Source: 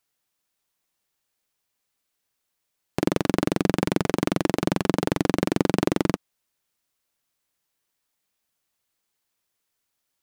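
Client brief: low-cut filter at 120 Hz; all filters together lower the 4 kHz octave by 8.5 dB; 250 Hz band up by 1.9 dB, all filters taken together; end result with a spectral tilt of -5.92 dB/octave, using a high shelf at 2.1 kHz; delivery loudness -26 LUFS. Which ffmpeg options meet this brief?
-af "highpass=120,equalizer=f=250:t=o:g=3,highshelf=f=2100:g=-4.5,equalizer=f=4000:t=o:g=-7,volume=0.794"

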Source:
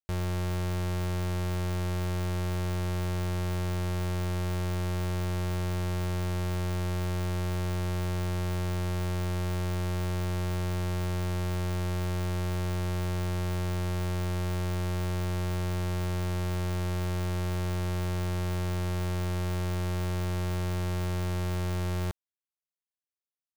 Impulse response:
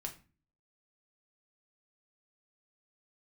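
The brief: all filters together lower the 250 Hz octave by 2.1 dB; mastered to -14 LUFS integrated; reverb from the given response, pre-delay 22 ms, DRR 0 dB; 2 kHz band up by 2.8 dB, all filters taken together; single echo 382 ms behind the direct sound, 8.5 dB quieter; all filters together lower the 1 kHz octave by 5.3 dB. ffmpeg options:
-filter_complex "[0:a]equalizer=f=250:t=o:g=-3.5,equalizer=f=1000:t=o:g=-8.5,equalizer=f=2000:t=o:g=6,aecho=1:1:382:0.376,asplit=2[s0][s1];[1:a]atrim=start_sample=2205,adelay=22[s2];[s1][s2]afir=irnorm=-1:irlink=0,volume=1.26[s3];[s0][s3]amix=inputs=2:normalize=0,volume=6.68"

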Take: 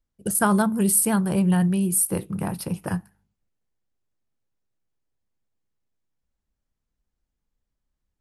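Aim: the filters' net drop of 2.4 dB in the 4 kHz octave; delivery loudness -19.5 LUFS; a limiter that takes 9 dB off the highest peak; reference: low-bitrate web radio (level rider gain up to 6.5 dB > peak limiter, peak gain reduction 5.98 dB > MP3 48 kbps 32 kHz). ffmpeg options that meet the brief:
-af "equalizer=f=4000:t=o:g=-3.5,alimiter=limit=0.141:level=0:latency=1,dynaudnorm=m=2.11,alimiter=limit=0.0708:level=0:latency=1,volume=3.98" -ar 32000 -c:a libmp3lame -b:a 48k

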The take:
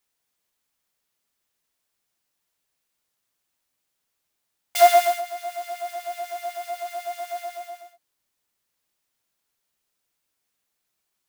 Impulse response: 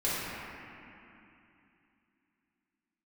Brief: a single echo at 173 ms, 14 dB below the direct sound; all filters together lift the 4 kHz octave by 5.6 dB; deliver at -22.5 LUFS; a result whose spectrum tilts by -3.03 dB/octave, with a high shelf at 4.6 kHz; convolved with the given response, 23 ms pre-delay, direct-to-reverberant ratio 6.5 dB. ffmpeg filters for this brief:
-filter_complex "[0:a]equalizer=f=4000:t=o:g=8.5,highshelf=f=4600:g=-3,aecho=1:1:173:0.2,asplit=2[s0][s1];[1:a]atrim=start_sample=2205,adelay=23[s2];[s1][s2]afir=irnorm=-1:irlink=0,volume=0.141[s3];[s0][s3]amix=inputs=2:normalize=0,volume=1.12"

